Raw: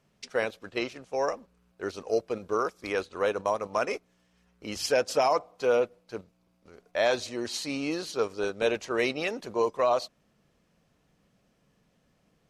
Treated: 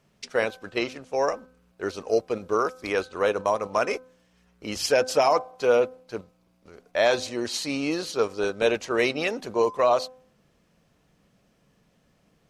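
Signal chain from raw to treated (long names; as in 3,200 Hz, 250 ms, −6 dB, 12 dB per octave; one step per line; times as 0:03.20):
hum removal 256 Hz, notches 6
level +4 dB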